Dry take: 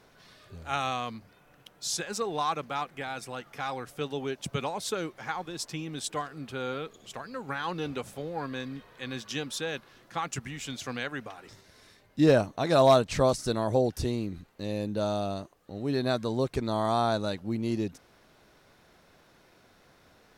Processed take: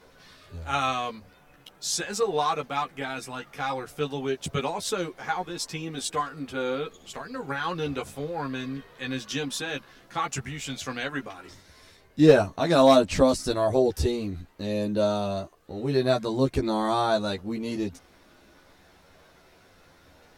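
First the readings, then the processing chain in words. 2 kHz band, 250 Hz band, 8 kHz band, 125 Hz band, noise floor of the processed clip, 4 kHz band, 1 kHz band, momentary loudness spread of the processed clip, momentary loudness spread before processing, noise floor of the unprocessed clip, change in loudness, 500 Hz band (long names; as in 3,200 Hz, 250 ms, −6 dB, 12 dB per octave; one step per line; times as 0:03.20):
+3.5 dB, +4.0 dB, +3.5 dB, +1.5 dB, −57 dBFS, +3.5 dB, +3.0 dB, 15 LU, 14 LU, −61 dBFS, +3.5 dB, +4.0 dB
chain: multi-voice chorus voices 6, 0.14 Hz, delay 13 ms, depth 2.3 ms
level +6.5 dB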